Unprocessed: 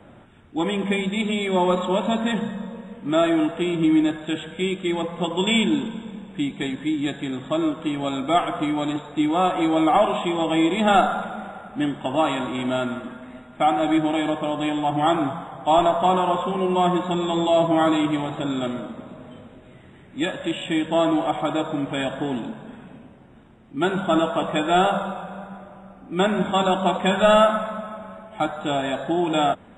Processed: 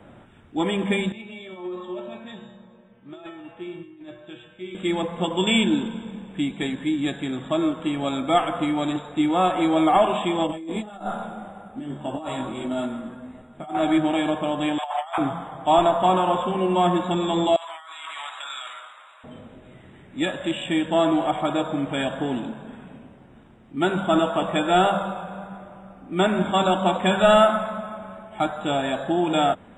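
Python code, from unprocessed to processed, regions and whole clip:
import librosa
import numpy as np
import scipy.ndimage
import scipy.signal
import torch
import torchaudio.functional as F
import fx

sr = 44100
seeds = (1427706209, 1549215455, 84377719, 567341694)

y = fx.chain(x, sr, fx.lowpass(hz=4700.0, slope=12),
    fx.over_compress(threshold_db=-21.0, ratio=-0.5),
    fx.comb_fb(f0_hz=120.0, decay_s=0.57, harmonics='odd', damping=0.0, mix_pct=90), at=(1.12, 4.75))
y = fx.chain(y, sr, fx.peak_eq(hz=2200.0, db=-7.5, octaves=2.3),
    fx.over_compress(threshold_db=-25.0, ratio=-0.5),
    fx.detune_double(cents=15), at=(10.47, 13.75))
y = fx.chain(y, sr, fx.steep_highpass(hz=620.0, slope=48),
    fx.over_compress(threshold_db=-27.0, ratio=-0.5), at=(14.78, 15.18))
y = fx.chain(y, sr, fx.highpass(hz=1100.0, slope=24),
    fx.over_compress(threshold_db=-37.0, ratio=-1.0), at=(17.56, 19.24))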